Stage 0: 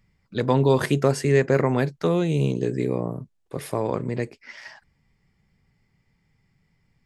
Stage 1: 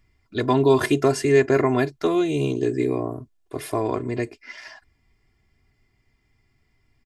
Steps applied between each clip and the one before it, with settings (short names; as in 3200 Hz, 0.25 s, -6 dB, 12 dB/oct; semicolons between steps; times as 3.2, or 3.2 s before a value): comb 2.9 ms, depth 79%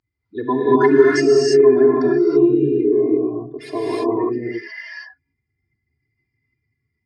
spectral contrast raised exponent 2.2; speaker cabinet 190–6700 Hz, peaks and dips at 200 Hz -8 dB, 580 Hz -9 dB, 4600 Hz +8 dB; non-linear reverb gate 0.36 s rising, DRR -6 dB; gain +1.5 dB